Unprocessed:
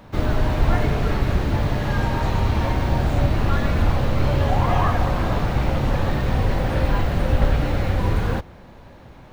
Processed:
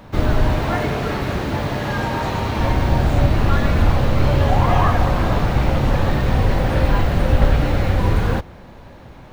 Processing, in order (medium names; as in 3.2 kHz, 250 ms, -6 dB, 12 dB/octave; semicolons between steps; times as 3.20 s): 0.59–2.60 s: high-pass 180 Hz 6 dB/octave; trim +3.5 dB